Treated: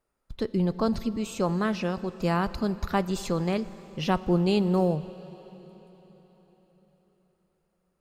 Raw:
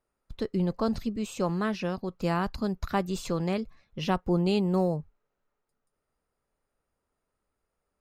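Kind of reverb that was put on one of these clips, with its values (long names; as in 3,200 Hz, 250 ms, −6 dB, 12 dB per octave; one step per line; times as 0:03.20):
dense smooth reverb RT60 4.5 s, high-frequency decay 0.95×, DRR 15 dB
level +2 dB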